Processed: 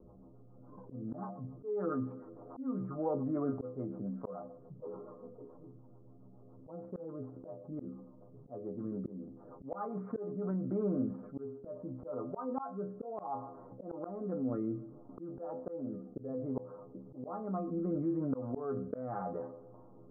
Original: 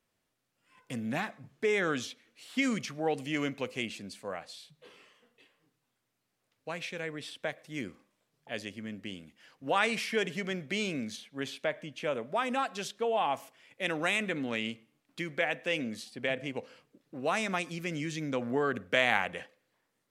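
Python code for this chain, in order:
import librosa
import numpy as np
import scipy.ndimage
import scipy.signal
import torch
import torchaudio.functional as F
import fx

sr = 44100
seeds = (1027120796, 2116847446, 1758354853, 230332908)

y = scipy.signal.sosfilt(scipy.signal.cheby1(6, 1.0, 1300.0, 'lowpass', fs=sr, output='sos'), x)
y = fx.stiff_resonator(y, sr, f0_hz=61.0, decay_s=0.31, stiffness=0.008)
y = fx.auto_swell(y, sr, attack_ms=614.0)
y = fx.env_lowpass(y, sr, base_hz=520.0, full_db=-44.0)
y = fx.rotary_switch(y, sr, hz=7.0, then_hz=0.65, switch_at_s=10.02)
y = fx.env_flatten(y, sr, amount_pct=50)
y = y * 10.0 ** (10.5 / 20.0)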